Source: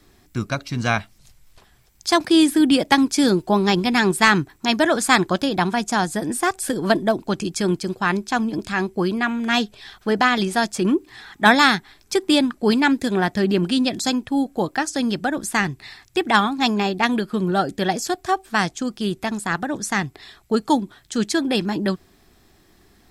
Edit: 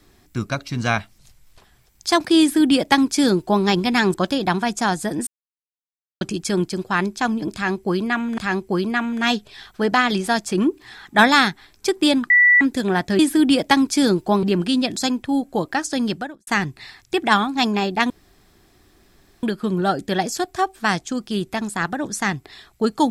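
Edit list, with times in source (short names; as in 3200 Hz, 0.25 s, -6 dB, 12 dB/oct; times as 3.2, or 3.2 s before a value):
2.4–3.64 copy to 13.46
4.14–5.25 cut
6.38–7.32 mute
8.65–9.49 loop, 2 plays
12.57–12.88 bleep 1960 Hz -9.5 dBFS
15.17–15.5 fade out quadratic
17.13 insert room tone 1.33 s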